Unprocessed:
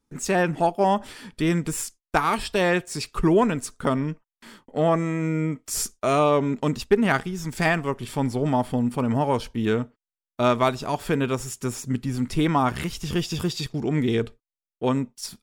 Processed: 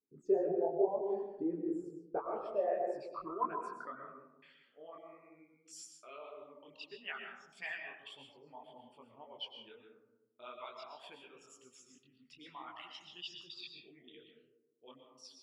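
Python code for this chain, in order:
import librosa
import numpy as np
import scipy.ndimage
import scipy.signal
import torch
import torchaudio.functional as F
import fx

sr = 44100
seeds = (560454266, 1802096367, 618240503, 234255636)

y = fx.envelope_sharpen(x, sr, power=2.0)
y = fx.filter_sweep_bandpass(y, sr, from_hz=410.0, to_hz=3000.0, start_s=2.04, end_s=4.66, q=5.7)
y = fx.dereverb_blind(y, sr, rt60_s=0.9)
y = fx.rev_freeverb(y, sr, rt60_s=1.1, hf_ratio=0.3, predelay_ms=80, drr_db=3.5)
y = fx.detune_double(y, sr, cents=59)
y = y * 10.0 ** (1.5 / 20.0)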